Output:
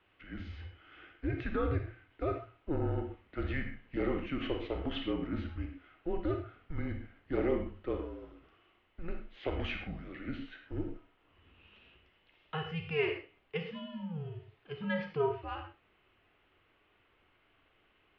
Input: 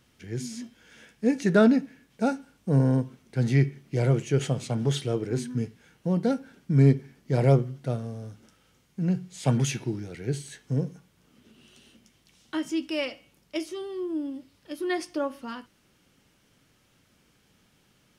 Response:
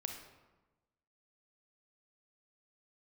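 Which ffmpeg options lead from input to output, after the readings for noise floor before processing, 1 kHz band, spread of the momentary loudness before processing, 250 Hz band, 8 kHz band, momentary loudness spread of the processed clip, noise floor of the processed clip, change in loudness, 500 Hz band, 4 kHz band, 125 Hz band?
−65 dBFS, −6.0 dB, 16 LU, −11.5 dB, below −35 dB, 13 LU, −71 dBFS, −10.5 dB, −7.5 dB, −6.5 dB, −15.0 dB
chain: -filter_complex "[0:a]highpass=frequency=160:width_type=q:width=0.5412,highpass=frequency=160:width_type=q:width=1.307,lowpass=frequency=3300:width_type=q:width=0.5176,lowpass=frequency=3300:width_type=q:width=0.7071,lowpass=frequency=3300:width_type=q:width=1.932,afreqshift=-160,alimiter=limit=-19dB:level=0:latency=1:release=99,lowshelf=frequency=270:width_type=q:width=1.5:gain=-6.5[link_01];[1:a]atrim=start_sample=2205,atrim=end_sample=6174[link_02];[link_01][link_02]afir=irnorm=-1:irlink=0"

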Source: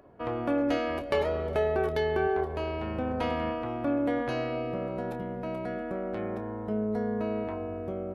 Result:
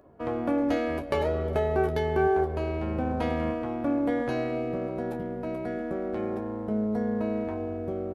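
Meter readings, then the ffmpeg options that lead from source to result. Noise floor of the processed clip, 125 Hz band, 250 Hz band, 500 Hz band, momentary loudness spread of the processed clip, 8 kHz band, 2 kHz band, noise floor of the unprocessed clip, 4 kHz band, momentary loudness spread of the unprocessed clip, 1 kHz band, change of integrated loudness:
−35 dBFS, +3.5 dB, +3.0 dB, +1.5 dB, 7 LU, can't be measured, 0.0 dB, −37 dBFS, −3.0 dB, 8 LU, +1.5 dB, +2.0 dB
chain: -filter_complex "[0:a]asplit=2[link_01][link_02];[link_02]adelay=13,volume=-7.5dB[link_03];[link_01][link_03]amix=inputs=2:normalize=0,asplit=2[link_04][link_05];[link_05]aeval=exprs='sgn(val(0))*max(abs(val(0))-0.00708,0)':channel_layout=same,volume=-8.5dB[link_06];[link_04][link_06]amix=inputs=2:normalize=0,equalizer=frequency=2700:width_type=o:width=2.4:gain=-5"

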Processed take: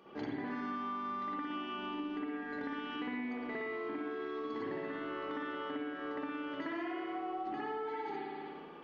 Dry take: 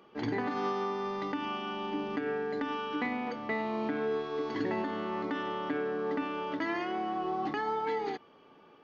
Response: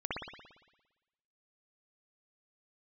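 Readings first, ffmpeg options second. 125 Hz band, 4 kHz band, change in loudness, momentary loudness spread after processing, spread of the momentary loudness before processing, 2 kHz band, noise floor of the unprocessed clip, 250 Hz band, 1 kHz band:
−10.5 dB, −5.5 dB, −6.0 dB, 2 LU, 3 LU, −4.5 dB, −59 dBFS, −4.0 dB, −6.0 dB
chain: -filter_complex "[1:a]atrim=start_sample=2205[link_01];[0:a][link_01]afir=irnorm=-1:irlink=0,acompressor=threshold=-39dB:ratio=5,volume=1dB"

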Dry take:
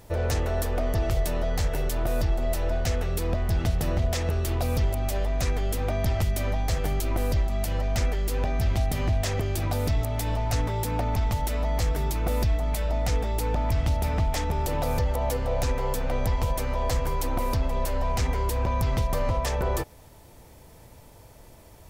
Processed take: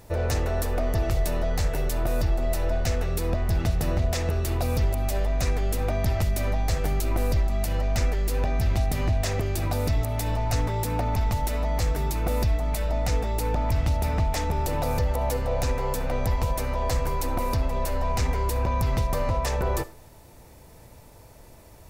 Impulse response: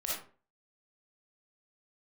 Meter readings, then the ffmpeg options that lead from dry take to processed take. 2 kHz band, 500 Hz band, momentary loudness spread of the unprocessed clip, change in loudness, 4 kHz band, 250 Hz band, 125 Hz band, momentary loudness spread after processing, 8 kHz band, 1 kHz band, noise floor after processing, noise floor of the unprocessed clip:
+0.5 dB, +0.5 dB, 2 LU, +0.5 dB, 0.0 dB, +0.5 dB, +0.5 dB, 2 LU, +0.5 dB, +1.0 dB, −49 dBFS, −50 dBFS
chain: -filter_complex "[0:a]bandreject=frequency=3200:width=14,asplit=2[link_01][link_02];[1:a]atrim=start_sample=2205,asetrate=40572,aresample=44100[link_03];[link_02][link_03]afir=irnorm=-1:irlink=0,volume=-20dB[link_04];[link_01][link_04]amix=inputs=2:normalize=0"

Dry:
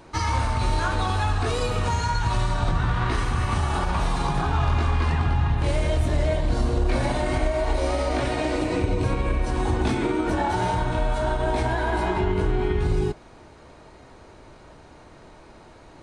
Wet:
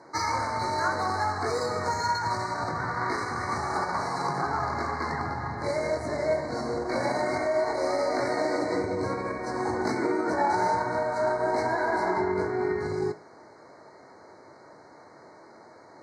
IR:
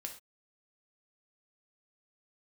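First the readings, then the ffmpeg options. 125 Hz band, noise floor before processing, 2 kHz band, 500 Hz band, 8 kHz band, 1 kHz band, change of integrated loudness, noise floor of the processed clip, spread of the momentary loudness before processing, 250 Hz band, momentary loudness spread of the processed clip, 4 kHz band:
−14.5 dB, −48 dBFS, −1.0 dB, 0.0 dB, −3.0 dB, 0.0 dB, −3.5 dB, −51 dBFS, 2 LU, −4.5 dB, 4 LU, −5.0 dB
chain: -filter_complex "[0:a]highpass=frequency=100:width=0.5412,highpass=frequency=100:width=1.3066,bass=frequency=250:gain=-11,treble=frequency=4000:gain=10,adynamicsmooth=sensitivity=1:basefreq=3400,asuperstop=centerf=3000:order=20:qfactor=1.7,asplit=2[link_01][link_02];[1:a]atrim=start_sample=2205,adelay=21[link_03];[link_02][link_03]afir=irnorm=-1:irlink=0,volume=-8.5dB[link_04];[link_01][link_04]amix=inputs=2:normalize=0"

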